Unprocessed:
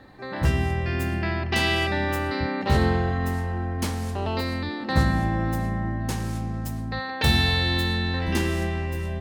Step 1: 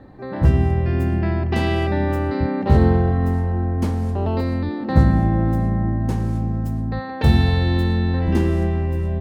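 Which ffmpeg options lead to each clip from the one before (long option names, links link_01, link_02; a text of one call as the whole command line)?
ffmpeg -i in.wav -af "tiltshelf=frequency=1200:gain=8.5,volume=-1dB" out.wav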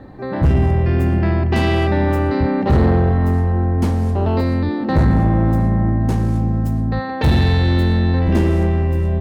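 ffmpeg -i in.wav -af "asoftclip=type=tanh:threshold=-14dB,volume=5.5dB" out.wav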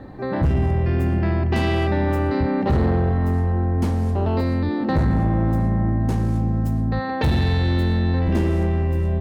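ffmpeg -i in.wav -af "acompressor=threshold=-20dB:ratio=2" out.wav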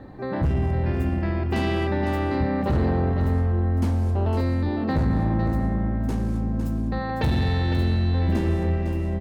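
ffmpeg -i in.wav -af "aecho=1:1:506:0.398,volume=-3.5dB" out.wav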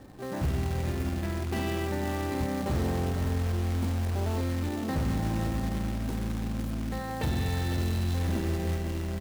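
ffmpeg -i in.wav -af "acrusher=bits=3:mode=log:mix=0:aa=0.000001,volume=-7dB" out.wav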